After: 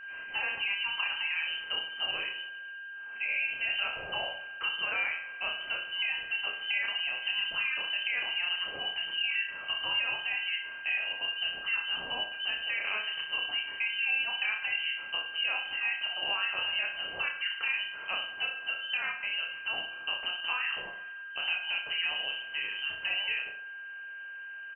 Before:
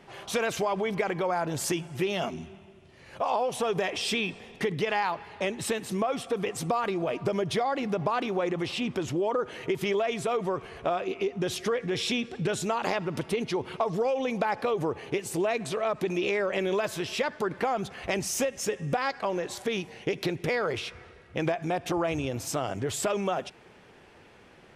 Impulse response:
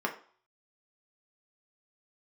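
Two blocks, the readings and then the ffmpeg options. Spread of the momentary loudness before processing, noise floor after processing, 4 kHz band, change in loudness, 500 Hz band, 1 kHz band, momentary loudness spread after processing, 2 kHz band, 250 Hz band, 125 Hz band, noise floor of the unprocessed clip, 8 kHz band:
4 LU, -43 dBFS, +7.0 dB, -1.5 dB, -22.0 dB, -12.0 dB, 5 LU, +6.0 dB, under -25 dB, under -25 dB, -54 dBFS, under -40 dB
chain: -filter_complex "[0:a]highpass=120,bandreject=f=1k:w=18,lowpass=f=2.7k:t=q:w=0.5098,lowpass=f=2.7k:t=q:w=0.6013,lowpass=f=2.7k:t=q:w=0.9,lowpass=f=2.7k:t=q:w=2.563,afreqshift=-3200,aeval=exprs='val(0)+0.0126*sin(2*PI*1600*n/s)':c=same,asplit=2[a][b];[b]aecho=0:1:30|64.5|104.2|149.8|202.3:0.631|0.398|0.251|0.158|0.1[c];[a][c]amix=inputs=2:normalize=0,volume=-6.5dB"

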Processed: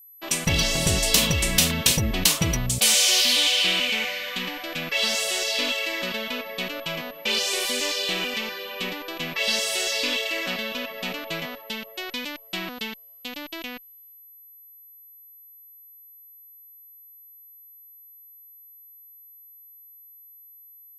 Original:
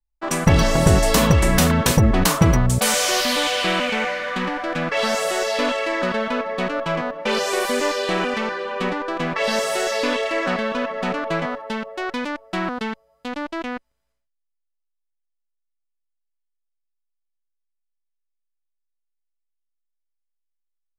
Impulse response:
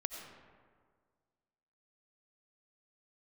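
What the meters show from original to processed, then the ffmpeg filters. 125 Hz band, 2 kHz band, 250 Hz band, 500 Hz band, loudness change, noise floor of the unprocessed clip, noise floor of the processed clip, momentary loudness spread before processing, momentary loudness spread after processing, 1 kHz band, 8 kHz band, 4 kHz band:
-9.5 dB, -2.5 dB, -9.5 dB, -10.0 dB, -2.0 dB, -76 dBFS, -50 dBFS, 12 LU, 15 LU, -11.5 dB, +2.5 dB, +4.0 dB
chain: -af "highshelf=f=2k:t=q:w=1.5:g=11.5,aeval=exprs='val(0)+0.0141*sin(2*PI*12000*n/s)':c=same,volume=-9.5dB"

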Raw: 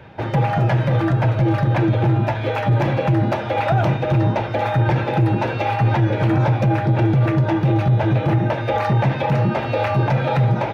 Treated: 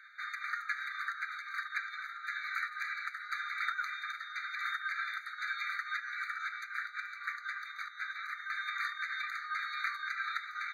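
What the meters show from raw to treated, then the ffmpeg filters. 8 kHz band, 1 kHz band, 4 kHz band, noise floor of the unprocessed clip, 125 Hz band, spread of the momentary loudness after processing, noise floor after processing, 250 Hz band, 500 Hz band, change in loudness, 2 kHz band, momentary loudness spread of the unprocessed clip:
n/a, -18.0 dB, -9.5 dB, -25 dBFS, under -40 dB, 5 LU, -48 dBFS, under -40 dB, under -40 dB, -18.5 dB, -5.0 dB, 3 LU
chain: -filter_complex "[0:a]asplit=2[a][b];[b]alimiter=limit=-16.5dB:level=0:latency=1:release=11,volume=-1dB[c];[a][c]amix=inputs=2:normalize=0,afftfilt=real='re*eq(mod(floor(b*sr/1024/1200),2),1)':imag='im*eq(mod(floor(b*sr/1024/1200),2),1)':win_size=1024:overlap=0.75,volume=-8.5dB"

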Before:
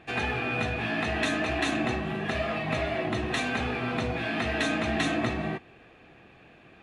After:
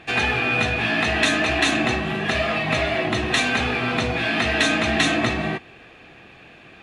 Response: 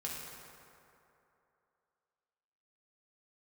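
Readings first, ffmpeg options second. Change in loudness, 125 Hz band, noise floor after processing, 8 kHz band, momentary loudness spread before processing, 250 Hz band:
+8.0 dB, +5.5 dB, -47 dBFS, +11.5 dB, 3 LU, +5.5 dB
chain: -af "equalizer=f=5.1k:w=0.32:g=6.5,acontrast=33"

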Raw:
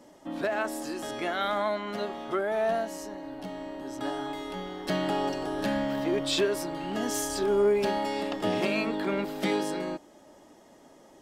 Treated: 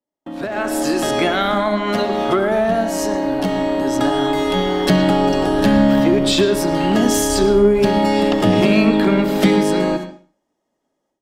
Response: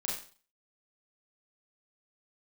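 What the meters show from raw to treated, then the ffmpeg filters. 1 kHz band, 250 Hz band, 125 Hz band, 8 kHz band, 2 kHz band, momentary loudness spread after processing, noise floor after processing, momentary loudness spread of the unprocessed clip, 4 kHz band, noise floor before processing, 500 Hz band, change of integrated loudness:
+12.0 dB, +16.5 dB, +18.5 dB, +12.0 dB, +11.0 dB, 6 LU, -75 dBFS, 11 LU, +12.0 dB, -55 dBFS, +12.0 dB, +13.5 dB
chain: -filter_complex "[0:a]aeval=exprs='0.158*(cos(1*acos(clip(val(0)/0.158,-1,1)))-cos(1*PI/2))+0.00178*(cos(7*acos(clip(val(0)/0.158,-1,1)))-cos(7*PI/2))':c=same,agate=range=-39dB:threshold=-42dB:ratio=16:detection=peak,acrossover=split=220[a][b];[b]acompressor=threshold=-38dB:ratio=5[c];[a][c]amix=inputs=2:normalize=0,asplit=2[d][e];[1:a]atrim=start_sample=2205,lowpass=5.7k,adelay=67[f];[e][f]afir=irnorm=-1:irlink=0,volume=-12.5dB[g];[d][g]amix=inputs=2:normalize=0,dynaudnorm=f=370:g=3:m=15.5dB,volume=5dB"

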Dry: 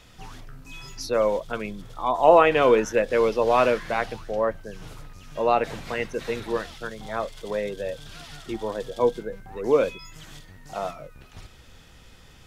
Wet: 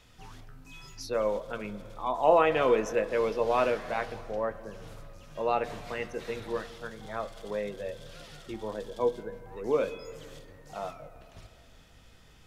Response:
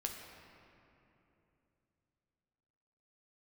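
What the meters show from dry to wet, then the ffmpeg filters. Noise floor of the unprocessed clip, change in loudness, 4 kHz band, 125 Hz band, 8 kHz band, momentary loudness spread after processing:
-50 dBFS, -6.5 dB, -7.0 dB, -5.5 dB, -7.0 dB, 21 LU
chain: -filter_complex "[0:a]asplit=2[a][b];[1:a]atrim=start_sample=2205,lowpass=2.9k,adelay=19[c];[b][c]afir=irnorm=-1:irlink=0,volume=-9.5dB[d];[a][d]amix=inputs=2:normalize=0,volume=-7dB"

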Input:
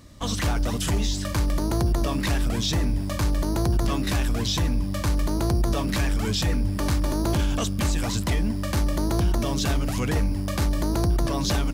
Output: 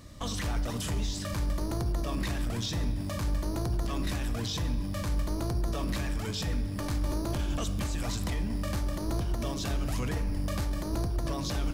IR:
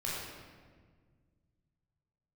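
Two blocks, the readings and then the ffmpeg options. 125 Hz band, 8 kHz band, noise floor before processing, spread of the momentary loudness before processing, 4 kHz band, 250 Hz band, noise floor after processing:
-7.0 dB, -8.0 dB, -28 dBFS, 2 LU, -8.0 dB, -8.0 dB, -34 dBFS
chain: -filter_complex "[0:a]alimiter=level_in=0.5dB:limit=-24dB:level=0:latency=1:release=24,volume=-0.5dB,asplit=2[a][b];[1:a]atrim=start_sample=2205[c];[b][c]afir=irnorm=-1:irlink=0,volume=-12dB[d];[a][d]amix=inputs=2:normalize=0,volume=-2dB"

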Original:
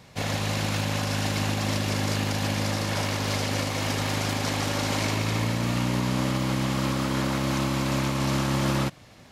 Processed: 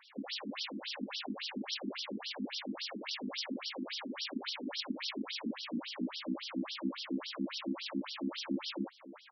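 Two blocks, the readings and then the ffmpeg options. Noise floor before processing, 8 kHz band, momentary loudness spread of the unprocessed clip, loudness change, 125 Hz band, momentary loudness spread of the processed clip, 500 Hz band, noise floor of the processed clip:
-49 dBFS, -21.0 dB, 1 LU, -12.5 dB, -27.5 dB, 2 LU, -15.0 dB, -53 dBFS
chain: -filter_complex "[0:a]asplit=2[a][b];[b]adelay=816.3,volume=-19dB,highshelf=f=4k:g=-18.4[c];[a][c]amix=inputs=2:normalize=0,acrossover=split=270|3000[d][e][f];[e]acompressor=threshold=-40dB:ratio=6[g];[d][g][f]amix=inputs=3:normalize=0,afftfilt=real='re*between(b*sr/1024,250*pow(4200/250,0.5+0.5*sin(2*PI*3.6*pts/sr))/1.41,250*pow(4200/250,0.5+0.5*sin(2*PI*3.6*pts/sr))*1.41)':imag='im*between(b*sr/1024,250*pow(4200/250,0.5+0.5*sin(2*PI*3.6*pts/sr))/1.41,250*pow(4200/250,0.5+0.5*sin(2*PI*3.6*pts/sr))*1.41)':win_size=1024:overlap=0.75,volume=1dB"

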